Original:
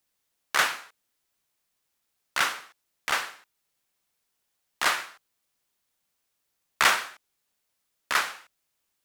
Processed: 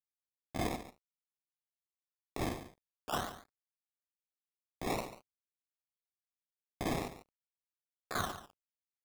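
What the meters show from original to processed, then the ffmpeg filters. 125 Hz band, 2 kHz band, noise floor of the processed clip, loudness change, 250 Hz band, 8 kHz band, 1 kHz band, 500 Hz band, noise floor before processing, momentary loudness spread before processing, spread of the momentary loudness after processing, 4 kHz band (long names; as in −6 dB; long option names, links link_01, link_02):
+12.0 dB, −19.5 dB, below −85 dBFS, −13.5 dB, +8.5 dB, −14.5 dB, −11.0 dB, −0.5 dB, −78 dBFS, 18 LU, 17 LU, −16.5 dB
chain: -filter_complex "[0:a]aeval=exprs='if(lt(val(0),0),0.447*val(0),val(0))':channel_layout=same,asplit=3[link_01][link_02][link_03];[link_01]bandpass=frequency=730:width_type=q:width=8,volume=0dB[link_04];[link_02]bandpass=frequency=1090:width_type=q:width=8,volume=-6dB[link_05];[link_03]bandpass=frequency=2440:width_type=q:width=8,volume=-9dB[link_06];[link_04][link_05][link_06]amix=inputs=3:normalize=0,equalizer=frequency=880:width_type=o:width=0.41:gain=-8.5,acrossover=split=100[link_07][link_08];[link_08]aeval=exprs='sgn(val(0))*max(abs(val(0))-0.00119,0)':channel_layout=same[link_09];[link_07][link_09]amix=inputs=2:normalize=0,acrusher=samples=21:mix=1:aa=0.000001:lfo=1:lforange=21:lforate=0.48,areverse,acompressor=threshold=-50dB:ratio=6,areverse,aecho=1:1:142:0.211,volume=17dB"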